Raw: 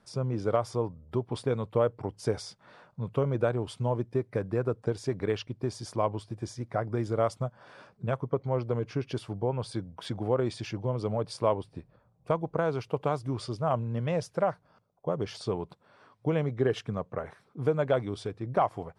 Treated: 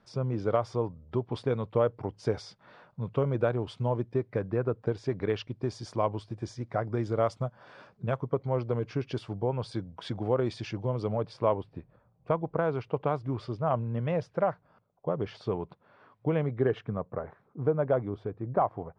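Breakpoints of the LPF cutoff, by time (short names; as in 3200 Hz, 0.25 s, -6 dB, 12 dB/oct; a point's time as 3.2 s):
4.16 s 4600 Hz
4.62 s 2900 Hz
5.62 s 5600 Hz
10.97 s 5600 Hz
11.38 s 2800 Hz
16.45 s 2800 Hz
17.22 s 1300 Hz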